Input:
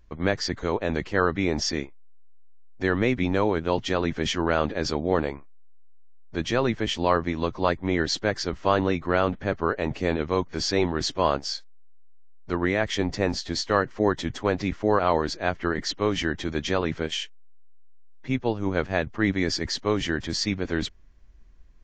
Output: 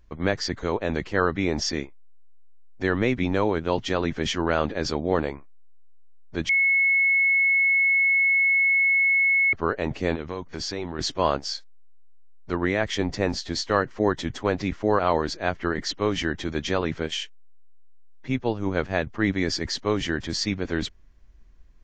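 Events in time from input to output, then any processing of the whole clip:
0:06.49–0:09.53: beep over 2,190 Hz −17 dBFS
0:10.15–0:10.99: downward compressor 3 to 1, threshold −28 dBFS

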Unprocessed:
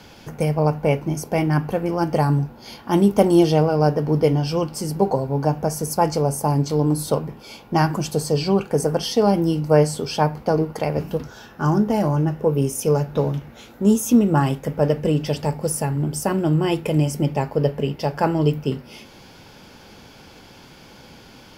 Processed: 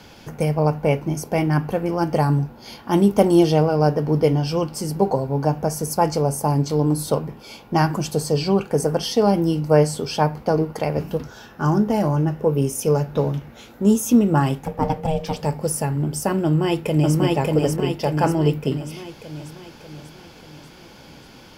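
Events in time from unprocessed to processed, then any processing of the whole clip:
0:14.63–0:15.42: ring modulation 320 Hz
0:16.44–0:17.17: delay throw 590 ms, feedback 55%, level −0.5 dB

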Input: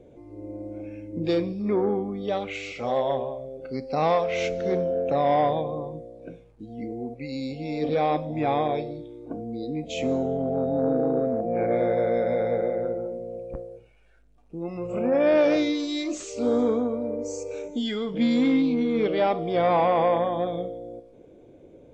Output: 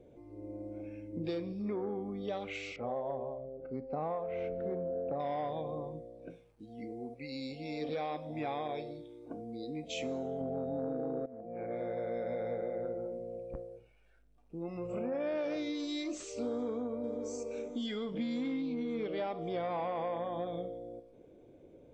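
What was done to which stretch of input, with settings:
0:02.76–0:05.20: low-pass filter 1,200 Hz
0:06.30–0:10.41: spectral tilt +1.5 dB per octave
0:11.26–0:12.64: fade in linear, from −16 dB
0:16.49–0:17.32: delay throw 540 ms, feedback 50%, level −14 dB
whole clip: notch filter 6,800 Hz, Q 16; downward compressor, threshold −26 dBFS; level −7 dB

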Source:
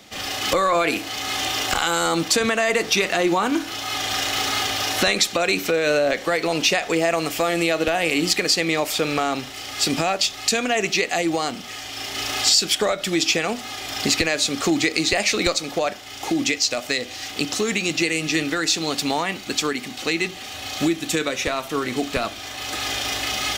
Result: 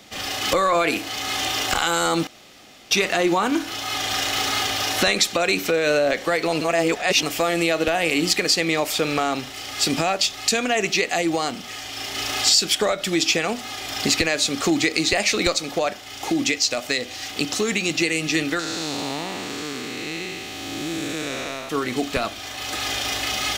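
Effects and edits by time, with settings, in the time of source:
0:02.27–0:02.91: fill with room tone
0:06.61–0:07.23: reverse
0:18.59–0:21.69: spectrum smeared in time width 397 ms

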